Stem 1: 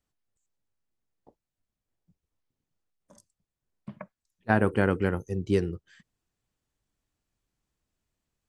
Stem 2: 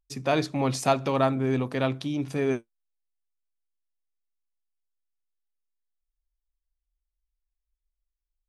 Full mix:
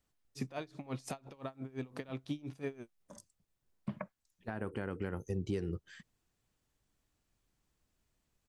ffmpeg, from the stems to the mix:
ffmpeg -i stem1.wav -i stem2.wav -filter_complex "[0:a]acompressor=threshold=-28dB:ratio=6,volume=2.5dB,asplit=2[link_01][link_02];[1:a]acompressor=threshold=-33dB:ratio=8,aeval=exprs='val(0)*pow(10,-23*(0.5-0.5*cos(2*PI*5.8*n/s))/20)':channel_layout=same,adelay=250,volume=2dB[link_03];[link_02]apad=whole_len=385251[link_04];[link_03][link_04]sidechaincompress=threshold=-53dB:ratio=3:attack=16:release=1340[link_05];[link_01][link_05]amix=inputs=2:normalize=0,alimiter=level_in=2dB:limit=-24dB:level=0:latency=1:release=343,volume=-2dB" out.wav

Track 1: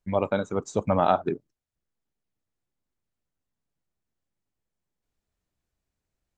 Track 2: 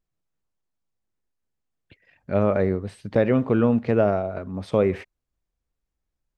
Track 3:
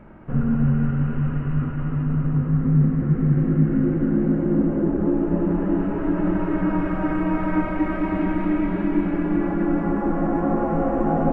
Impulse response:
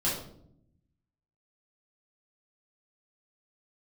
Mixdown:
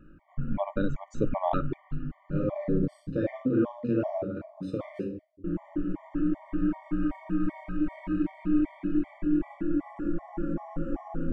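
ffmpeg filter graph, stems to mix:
-filter_complex "[0:a]lowpass=frequency=2800:poles=1,deesser=0.85,adelay=450,volume=-3.5dB[link_01];[1:a]volume=-11.5dB,asplit=2[link_02][link_03];[link_03]volume=-8dB[link_04];[2:a]equalizer=frequency=410:width=0.34:gain=-11,volume=-4dB,asplit=3[link_05][link_06][link_07];[link_05]atrim=end=2.99,asetpts=PTS-STARTPTS,afade=type=out:start_time=2.986:duration=0.004:curve=hsin[link_08];[link_06]atrim=start=2.99:end=5.44,asetpts=PTS-STARTPTS,volume=0[link_09];[link_07]atrim=start=5.44,asetpts=PTS-STARTPTS,afade=type=in:duration=0.004:curve=hsin[link_10];[link_08][link_09][link_10]concat=n=3:v=0:a=1,asplit=2[link_11][link_12];[link_12]volume=-16dB[link_13];[link_02][link_11]amix=inputs=2:normalize=0,tremolo=f=2.1:d=0.48,acompressor=threshold=-33dB:ratio=6,volume=0dB[link_14];[3:a]atrim=start_sample=2205[link_15];[link_04][link_13]amix=inputs=2:normalize=0[link_16];[link_16][link_15]afir=irnorm=-1:irlink=0[link_17];[link_01][link_14][link_17]amix=inputs=3:normalize=0,equalizer=frequency=300:width_type=o:width=0.4:gain=12,afftfilt=real='re*gt(sin(2*PI*2.6*pts/sr)*(1-2*mod(floor(b*sr/1024/600),2)),0)':imag='im*gt(sin(2*PI*2.6*pts/sr)*(1-2*mod(floor(b*sr/1024/600),2)),0)':win_size=1024:overlap=0.75"

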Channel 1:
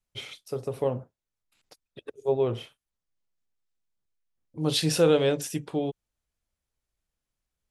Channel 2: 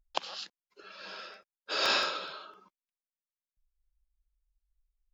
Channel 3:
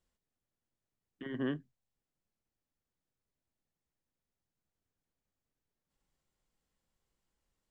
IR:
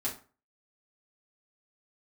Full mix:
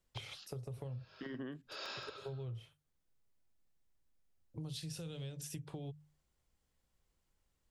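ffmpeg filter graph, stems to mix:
-filter_complex "[0:a]lowshelf=frequency=160:width_type=q:width=1.5:gain=9,bandreject=frequency=50:width_type=h:width=6,bandreject=frequency=100:width_type=h:width=6,bandreject=frequency=150:width_type=h:width=6,acrossover=split=190|3000[link_01][link_02][link_03];[link_02]acompressor=threshold=-35dB:ratio=6[link_04];[link_01][link_04][link_03]amix=inputs=3:normalize=0,volume=-5dB[link_05];[1:a]volume=-14.5dB[link_06];[2:a]volume=1dB[link_07];[link_05][link_06][link_07]amix=inputs=3:normalize=0,acompressor=threshold=-41dB:ratio=12"

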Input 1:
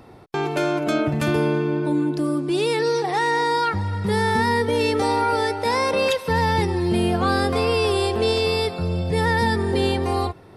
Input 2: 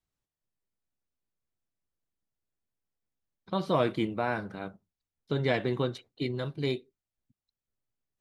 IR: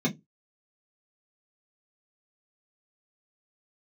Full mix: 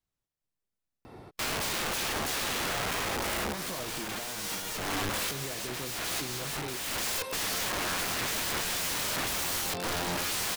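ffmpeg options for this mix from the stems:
-filter_complex "[0:a]aeval=exprs='(mod(15*val(0)+1,2)-1)/15':channel_layout=same,adelay=1050,volume=-2dB[link_01];[1:a]alimiter=limit=-22dB:level=0:latency=1,volume=-1dB[link_02];[link_01][link_02]amix=inputs=2:normalize=0,alimiter=level_in=3dB:limit=-24dB:level=0:latency=1:release=433,volume=-3dB"

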